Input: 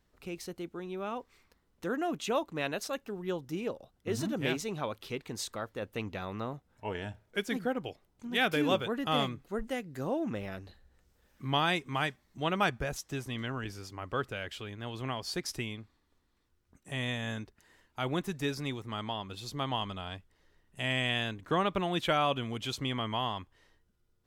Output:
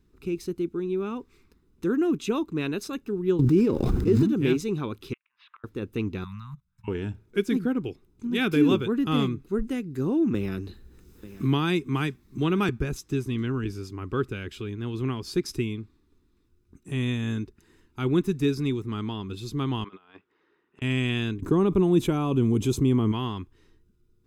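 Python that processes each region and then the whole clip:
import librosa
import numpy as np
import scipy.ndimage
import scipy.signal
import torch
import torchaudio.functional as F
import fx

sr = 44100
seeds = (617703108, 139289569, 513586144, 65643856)

y = fx.chain(x, sr, fx.median_filter(points=15),
    fx.env_flatten(amount_pct=100), at=(3.39, 4.23))
y = fx.chain(y, sr, fx.ellip_bandpass(low_hz=1000.0, high_hz=2900.0, order=3, stop_db=50),
    fx.gate_flip(shuts_db=-37.0, range_db=-26), at=(5.13, 5.64))
y = fx.chain(y, sr, fx.high_shelf(hz=11000.0, db=4.5),
    fx.level_steps(step_db=21),
    fx.ellip_bandstop(low_hz=180.0, high_hz=1000.0, order=3, stop_db=50), at=(6.24, 6.88))
y = fx.chain(y, sr, fx.high_shelf(hz=12000.0, db=7.5),
    fx.echo_single(ms=890, db=-23.0),
    fx.band_squash(depth_pct=40), at=(10.34, 12.69))
y = fx.chain(y, sr, fx.bandpass_edges(low_hz=610.0, high_hz=2100.0),
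    fx.over_compress(threshold_db=-51.0, ratio=-0.5), at=(19.84, 20.82))
y = fx.chain(y, sr, fx.band_shelf(hz=2500.0, db=-10.0, octaves=2.3),
    fx.env_flatten(amount_pct=50), at=(21.42, 23.12))
y = fx.low_shelf_res(y, sr, hz=480.0, db=7.0, q=3.0)
y = y + 0.32 * np.pad(y, (int(0.8 * sr / 1000.0), 0))[:len(y)]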